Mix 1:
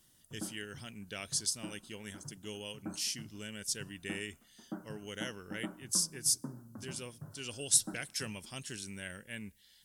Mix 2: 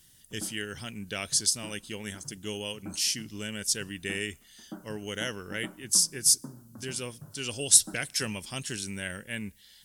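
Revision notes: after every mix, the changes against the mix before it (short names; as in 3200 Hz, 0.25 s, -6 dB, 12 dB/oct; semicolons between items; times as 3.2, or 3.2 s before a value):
speech +8.0 dB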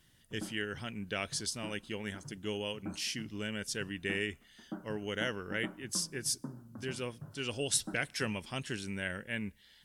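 speech: add tone controls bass -2 dB, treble -14 dB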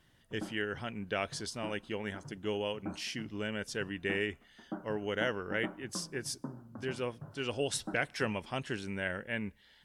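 master: add EQ curve 200 Hz 0 dB, 760 Hz +6 dB, 9700 Hz -8 dB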